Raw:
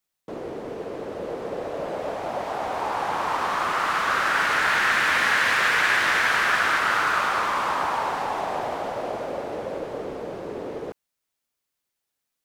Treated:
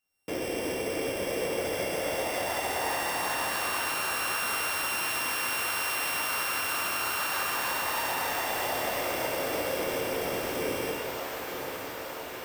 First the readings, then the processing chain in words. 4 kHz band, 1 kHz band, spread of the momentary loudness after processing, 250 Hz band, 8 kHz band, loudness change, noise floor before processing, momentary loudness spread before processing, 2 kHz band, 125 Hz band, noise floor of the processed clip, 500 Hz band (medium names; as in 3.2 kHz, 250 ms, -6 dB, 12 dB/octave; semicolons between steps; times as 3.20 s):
-2.0 dB, -8.0 dB, 6 LU, -1.0 dB, +5.0 dB, -6.0 dB, -82 dBFS, 15 LU, -9.0 dB, -2.0 dB, -38 dBFS, -2.0 dB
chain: sorted samples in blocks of 16 samples; tremolo saw up 2.7 Hz, depth 35%; echo that smears into a reverb 954 ms, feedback 67%, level -13 dB; peak limiter -20.5 dBFS, peak gain reduction 11 dB; compression 5:1, threshold -34 dBFS, peak gain reduction 8 dB; gated-style reverb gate 480 ms falling, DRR -3 dB; trim +1.5 dB